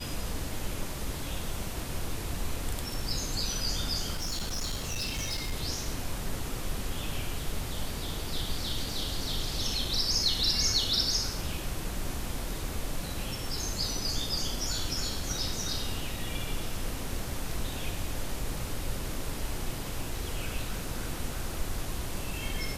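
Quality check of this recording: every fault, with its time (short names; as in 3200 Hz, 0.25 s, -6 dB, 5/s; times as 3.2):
4.13–5.53 clipped -28.5 dBFS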